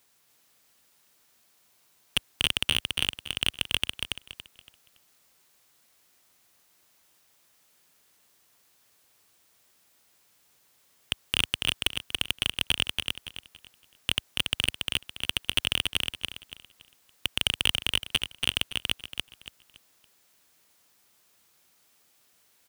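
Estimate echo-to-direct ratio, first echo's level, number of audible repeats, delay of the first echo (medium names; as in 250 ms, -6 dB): -3.5 dB, -4.0 dB, 3, 282 ms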